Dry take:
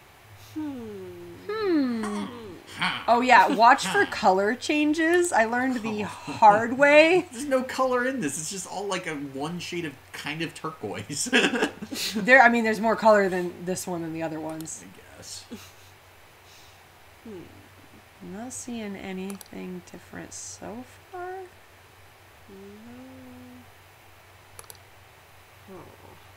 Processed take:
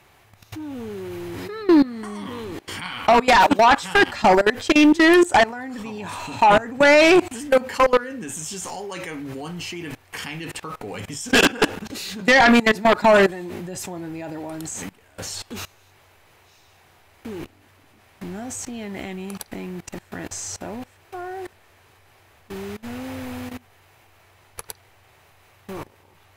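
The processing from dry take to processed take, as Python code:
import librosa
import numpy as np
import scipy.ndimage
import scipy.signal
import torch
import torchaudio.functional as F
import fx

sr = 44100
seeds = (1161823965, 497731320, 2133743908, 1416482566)

y = fx.level_steps(x, sr, step_db=23)
y = fx.fold_sine(y, sr, drive_db=10, ceiling_db=-9.5)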